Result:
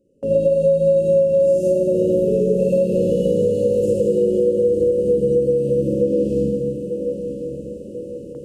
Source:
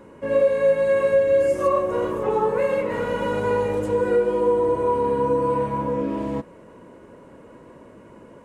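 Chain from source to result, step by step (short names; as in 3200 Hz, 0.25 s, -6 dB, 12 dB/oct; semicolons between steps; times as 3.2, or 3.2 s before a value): diffused feedback echo 1.002 s, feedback 42%, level -10 dB; Schroeder reverb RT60 1.1 s, DRR -3.5 dB; compressor, threshold -17 dBFS, peak gain reduction 10.5 dB; brick-wall FIR band-stop 600–2500 Hz; band shelf 2700 Hz -9.5 dB 1.3 oct; gate with hold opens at -29 dBFS; dynamic EQ 180 Hz, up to +7 dB, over -45 dBFS, Q 3.2; gain +3.5 dB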